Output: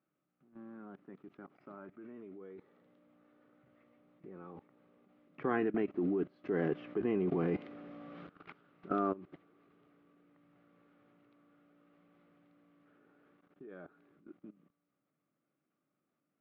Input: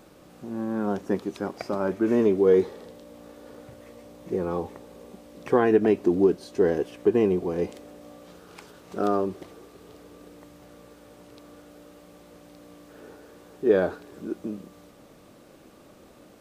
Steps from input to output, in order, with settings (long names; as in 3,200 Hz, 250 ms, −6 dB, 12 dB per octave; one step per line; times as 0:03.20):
source passing by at 0:07.48, 5 m/s, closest 2.3 metres
loudspeaker in its box 140–3,000 Hz, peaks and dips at 150 Hz +10 dB, 280 Hz +4 dB, 490 Hz −6 dB, 940 Hz −4 dB, 1,300 Hz +8 dB, 2,100 Hz +4 dB
output level in coarse steps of 18 dB
level +4.5 dB